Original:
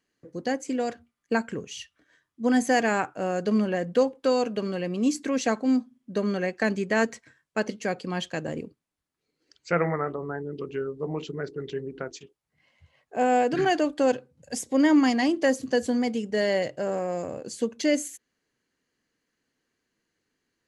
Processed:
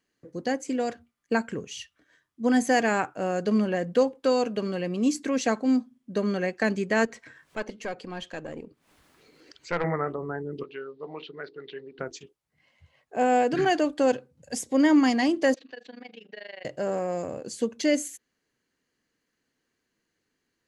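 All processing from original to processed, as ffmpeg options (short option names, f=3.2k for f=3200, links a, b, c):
-filter_complex "[0:a]asettb=1/sr,asplit=3[a][b][c];[a]atrim=end=7.054[d];[b]atrim=start=7.05:end=9.84,asetpts=PTS-STARTPTS,afade=t=in:d=0.004:c=qsin,afade=t=out:st=2.786:d=0.004:c=qsin,bass=f=250:g=-5,treble=f=4k:g=-6,aeval=exprs='(tanh(7.94*val(0)+0.7)-tanh(0.7))/7.94':c=same,acompressor=mode=upward:threshold=-35dB:ratio=2.5:attack=3.2:release=140:knee=2.83:detection=peak[e];[c]atrim=start=9.836[f];[d][e]acrossfade=d=0.004:c1=hsin:c2=qsin[g];[g][f]acrossfade=d=0.004:c1=qsin:c2=hsin,asettb=1/sr,asplit=3[h][i][j];[h]atrim=end=10.634[k];[i]atrim=start=10.63:end=11.99,asetpts=PTS-STARTPTS,afade=t=in:d=0.004:c=qsin,afade=t=out:st=1.356:d=0.004:c=qsin,highpass=f=900:p=1,highshelf=f=5.5k:t=q:w=3:g=-10.5,acrossover=split=3200[l][m];[m]acompressor=threshold=-58dB:ratio=4:attack=1:release=60[n];[l][n]amix=inputs=2:normalize=0[o];[j]atrim=start=11.986[p];[k][o]acrossfade=d=0.004:c1=hsin:c2=qsin[q];[q][p]acrossfade=d=0.004:c1=qsin:c2=hsin,asettb=1/sr,asplit=3[r][s][t];[r]atrim=end=15.544[u];[s]atrim=start=15.54:end=16.65,asetpts=PTS-STARTPTS,afade=t=in:d=0.004:c=qsin,afade=t=out:st=1.106:d=0.004:c=qsin,highpass=f=310:w=0.5412,highpass=f=310:w=1.3066,equalizer=f=380:t=q:w=4:g=-7,equalizer=f=550:t=q:w=4:g=-5,equalizer=f=990:t=q:w=4:g=-3,equalizer=f=1.7k:t=q:w=4:g=5,equalizer=f=2.6k:t=q:w=4:g=8,equalizer=f=3.8k:t=q:w=4:g=8,lowpass=f=4.1k:w=0.5412,lowpass=f=4.1k:w=1.3066,acompressor=threshold=-41dB:ratio=2.5:attack=3.2:release=140:knee=1:detection=peak,tremolo=f=25:d=0.919[v];[t]atrim=start=16.646[w];[u][v]acrossfade=d=0.004:c1=hsin:c2=qsin[x];[x][w]acrossfade=d=0.004:c1=qsin:c2=hsin"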